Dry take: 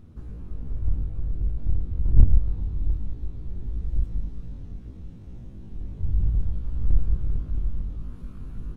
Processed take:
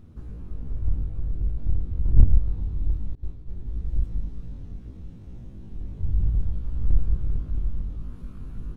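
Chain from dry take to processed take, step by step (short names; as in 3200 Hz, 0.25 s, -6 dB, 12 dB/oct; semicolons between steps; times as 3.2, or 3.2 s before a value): 3.15–3.98 expander -26 dBFS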